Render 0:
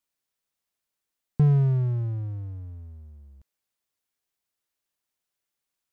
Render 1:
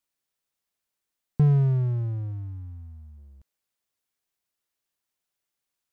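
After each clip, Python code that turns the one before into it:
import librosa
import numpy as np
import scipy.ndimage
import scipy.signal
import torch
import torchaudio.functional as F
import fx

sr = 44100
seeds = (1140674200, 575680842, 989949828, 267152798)

y = fx.spec_box(x, sr, start_s=2.32, length_s=0.86, low_hz=330.0, high_hz=680.0, gain_db=-14)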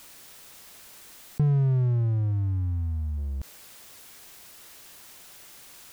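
y = fx.env_flatten(x, sr, amount_pct=70)
y = y * librosa.db_to_amplitude(-4.0)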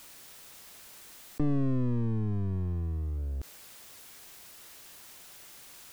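y = np.minimum(x, 2.0 * 10.0 ** (-28.0 / 20.0) - x)
y = y * librosa.db_to_amplitude(-2.0)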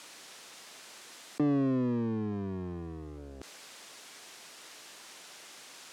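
y = fx.bandpass_edges(x, sr, low_hz=230.0, high_hz=7400.0)
y = y * librosa.db_to_amplitude(4.5)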